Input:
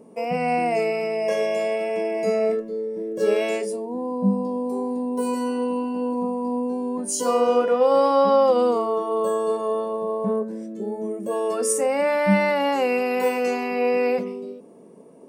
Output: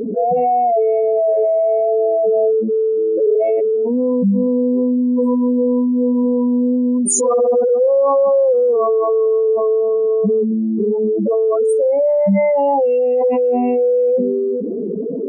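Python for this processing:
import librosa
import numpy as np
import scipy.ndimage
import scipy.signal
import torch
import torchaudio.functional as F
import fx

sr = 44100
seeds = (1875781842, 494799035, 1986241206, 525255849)

y = fx.spec_expand(x, sr, power=3.3)
y = fx.env_flatten(y, sr, amount_pct=70)
y = y * 10.0 ** (3.0 / 20.0)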